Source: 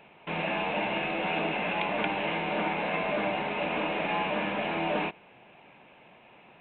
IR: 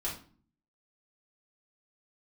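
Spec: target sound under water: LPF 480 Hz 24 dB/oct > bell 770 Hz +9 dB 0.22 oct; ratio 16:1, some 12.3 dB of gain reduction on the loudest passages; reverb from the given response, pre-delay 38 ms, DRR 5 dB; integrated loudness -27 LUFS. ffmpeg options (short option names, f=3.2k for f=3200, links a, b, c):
-filter_complex "[0:a]acompressor=threshold=-37dB:ratio=16,asplit=2[a][b];[1:a]atrim=start_sample=2205,adelay=38[c];[b][c]afir=irnorm=-1:irlink=0,volume=-8dB[d];[a][d]amix=inputs=2:normalize=0,lowpass=f=480:w=0.5412,lowpass=f=480:w=1.3066,equalizer=f=770:t=o:w=0.22:g=9,volume=19dB"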